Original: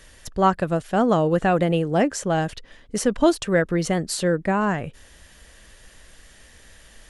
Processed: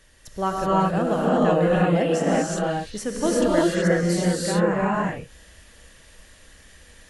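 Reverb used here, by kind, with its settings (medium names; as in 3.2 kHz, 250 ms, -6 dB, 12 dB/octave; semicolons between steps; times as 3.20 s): gated-style reverb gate 400 ms rising, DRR -6.5 dB; trim -7.5 dB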